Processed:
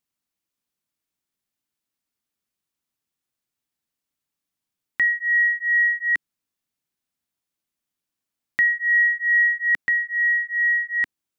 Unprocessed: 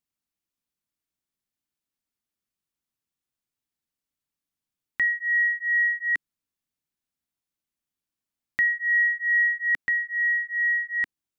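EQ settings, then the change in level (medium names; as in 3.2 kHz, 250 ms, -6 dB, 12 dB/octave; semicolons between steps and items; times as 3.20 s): bass shelf 84 Hz -5.5 dB; +3.5 dB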